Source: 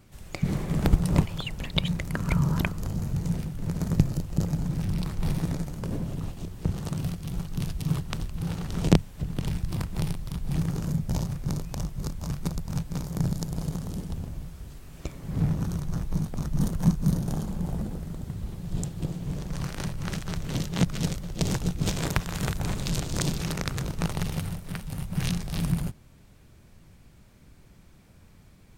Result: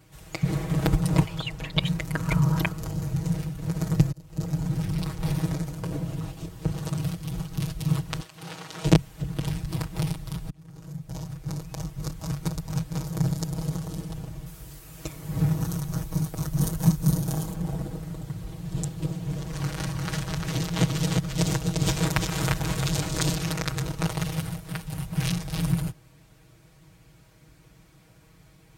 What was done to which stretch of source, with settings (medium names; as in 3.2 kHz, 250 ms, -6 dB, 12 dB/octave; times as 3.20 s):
1.27–1.80 s: treble shelf 11 kHz -> 5.9 kHz -7 dB
4.12–4.63 s: fade in
8.20–8.85 s: frequency weighting A
10.50–12.20 s: fade in
14.46–17.54 s: treble shelf 7.9 kHz +11 dB
19.12–23.38 s: delay 348 ms -3.5 dB
whole clip: high-pass 47 Hz; peaking EQ 210 Hz -8 dB 0.54 oct; comb 6.3 ms, depth 90%